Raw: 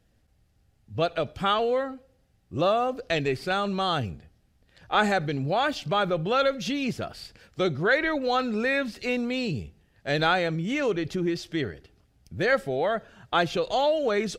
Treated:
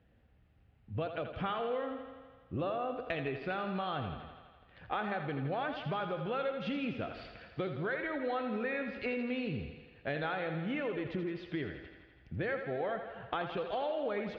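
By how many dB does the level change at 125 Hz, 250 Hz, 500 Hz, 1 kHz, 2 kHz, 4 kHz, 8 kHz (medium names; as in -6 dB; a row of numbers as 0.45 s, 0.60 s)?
-8.0 dB, -8.5 dB, -10.0 dB, -10.5 dB, -11.0 dB, -15.0 dB, under -30 dB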